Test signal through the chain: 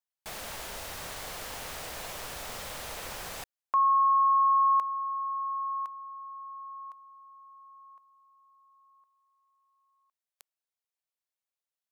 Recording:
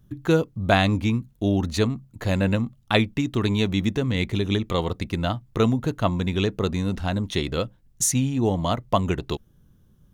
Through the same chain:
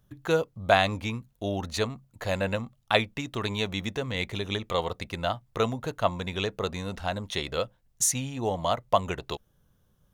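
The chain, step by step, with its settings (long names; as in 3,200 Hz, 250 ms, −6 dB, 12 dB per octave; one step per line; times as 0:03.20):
low shelf with overshoot 420 Hz −7.5 dB, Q 1.5
level −2 dB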